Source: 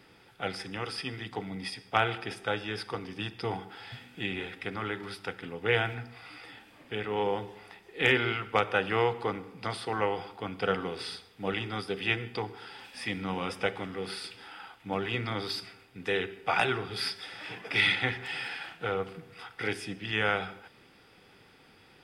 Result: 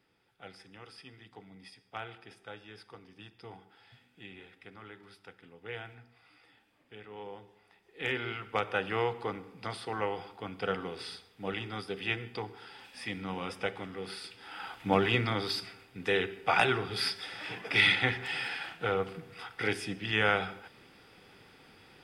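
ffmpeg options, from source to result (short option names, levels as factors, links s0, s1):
-af "volume=2.37,afade=t=in:st=7.66:d=1.1:silence=0.281838,afade=t=in:st=14.4:d=0.4:silence=0.266073,afade=t=out:st=14.8:d=0.59:silence=0.473151"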